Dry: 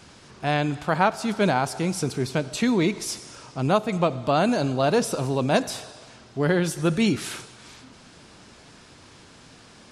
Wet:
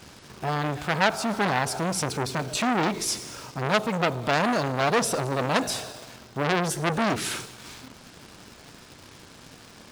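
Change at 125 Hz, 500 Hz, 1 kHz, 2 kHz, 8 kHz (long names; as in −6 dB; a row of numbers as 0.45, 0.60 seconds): −3.5, −3.0, 0.0, +2.5, +3.0 decibels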